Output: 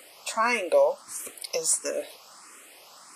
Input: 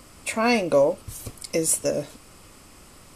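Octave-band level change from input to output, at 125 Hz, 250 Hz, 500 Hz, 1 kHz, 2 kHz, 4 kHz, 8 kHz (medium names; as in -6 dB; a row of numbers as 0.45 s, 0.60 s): under -20 dB, -14.0 dB, -3.0 dB, 0.0 dB, -0.5 dB, -1.5 dB, -1.0 dB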